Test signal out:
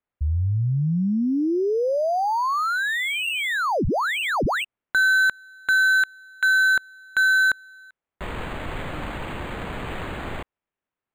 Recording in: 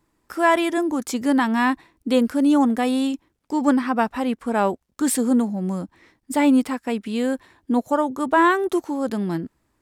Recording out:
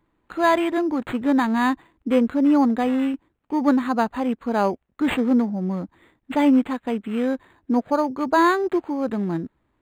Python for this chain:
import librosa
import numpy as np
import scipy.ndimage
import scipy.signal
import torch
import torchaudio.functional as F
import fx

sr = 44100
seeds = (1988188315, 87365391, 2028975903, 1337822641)

y = np.interp(np.arange(len(x)), np.arange(len(x))[::8], x[::8])